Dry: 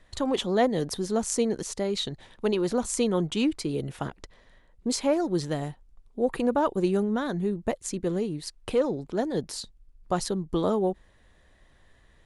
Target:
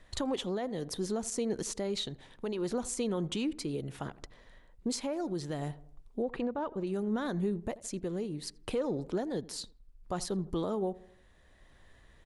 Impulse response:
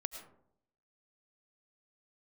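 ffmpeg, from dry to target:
-filter_complex "[0:a]asettb=1/sr,asplit=3[a][b][c];[a]atrim=end=6.224[d];[b]atrim=start=6.22:end=6.87,asetpts=PTS-STARTPTS,afade=t=in:d=0.004:c=qsin,afade=t=out:st=0.646:d=0.004:c=qsin,lowpass=3.8k[e];[c]atrim=start=6.866[f];[d][e]acrossfade=d=0.004:c1=hsin:c2=qsin[g];[g][f]acrossfade=d=0.004:c1=qsin:c2=hsin,asplit=2[h][i];[i]adelay=82,lowpass=f=1.4k:p=1,volume=-21dB,asplit=2[j][k];[k]adelay=82,lowpass=f=1.4k:p=1,volume=0.5,asplit=2[l][m];[m]adelay=82,lowpass=f=1.4k:p=1,volume=0.5,asplit=2[n][o];[o]adelay=82,lowpass=f=1.4k:p=1,volume=0.5[p];[h][j][l][n][p]amix=inputs=5:normalize=0,alimiter=limit=-22.5dB:level=0:latency=1:release=237,tremolo=f=0.67:d=0.34"

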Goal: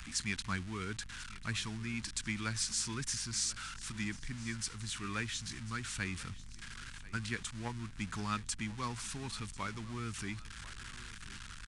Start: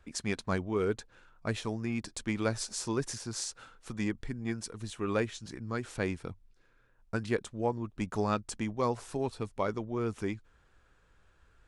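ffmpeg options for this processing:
-filter_complex "[0:a]aeval=exprs='val(0)+0.5*0.0126*sgn(val(0))':c=same,aresample=22050,aresample=44100,aeval=exprs='val(0)+0.00355*(sin(2*PI*50*n/s)+sin(2*PI*2*50*n/s)/2+sin(2*PI*3*50*n/s)/3+sin(2*PI*4*50*n/s)/4+sin(2*PI*5*50*n/s)/5)':c=same,acrossover=split=260|1100|4800[a][b][c][d];[b]acrusher=bits=2:mix=0:aa=0.5[e];[a][e][c][d]amix=inputs=4:normalize=0,lowshelf=f=380:g=-6,aecho=1:1:1042|2084|3126|4168:0.119|0.0559|0.0263|0.0123"

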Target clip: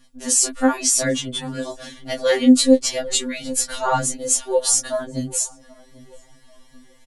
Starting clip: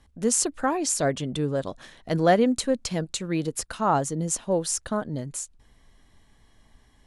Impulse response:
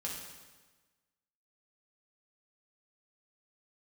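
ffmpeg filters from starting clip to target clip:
-filter_complex "[0:a]asettb=1/sr,asplit=3[a][b][c];[a]atrim=end=2.954[d];[b]atrim=start=2.95:end=4.26,asetpts=PTS-STARTPTS,afade=t=in:d=0.004:c=qsin,afade=t=out:st=1.306:d=0.004:c=qsin,lowshelf=f=120:g=9.5[e];[c]atrim=start=4.256[f];[d][e]acrossfade=d=0.004:c1=hsin:c2=qsin[g];[g][f]acrossfade=d=0.004:c1=qsin:c2=hsin,asplit=2[h][i];[i]adelay=787,lowpass=f=1k:p=1,volume=-18dB,asplit=2[j][k];[k]adelay=787,lowpass=f=1k:p=1,volume=0.4,asplit=2[l][m];[m]adelay=787,lowpass=f=1k:p=1,volume=0.4[n];[j][l][n]amix=inputs=3:normalize=0[o];[h][o]amix=inputs=2:normalize=0,flanger=delay=15:depth=4.7:speed=0.96,highshelf=f=2.1k:g=10,aecho=1:1:3.5:0.58,alimiter=level_in=8.5dB:limit=-1dB:release=50:level=0:latency=1,afftfilt=real='re*2.45*eq(mod(b,6),0)':imag='im*2.45*eq(mod(b,6),0)':win_size=2048:overlap=0.75,volume=-2.5dB"

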